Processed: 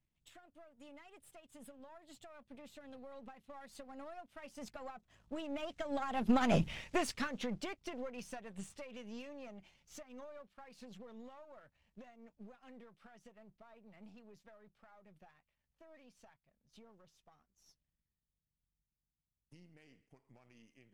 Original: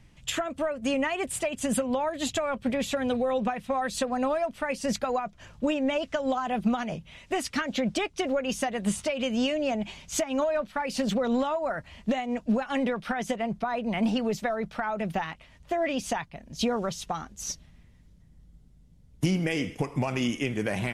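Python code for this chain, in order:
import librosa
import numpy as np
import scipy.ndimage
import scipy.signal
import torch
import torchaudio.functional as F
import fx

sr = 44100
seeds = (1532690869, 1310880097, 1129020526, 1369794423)

y = np.where(x < 0.0, 10.0 ** (-7.0 / 20.0) * x, x)
y = fx.doppler_pass(y, sr, speed_mps=19, closest_m=1.4, pass_at_s=6.62)
y = y * librosa.db_to_amplitude(11.0)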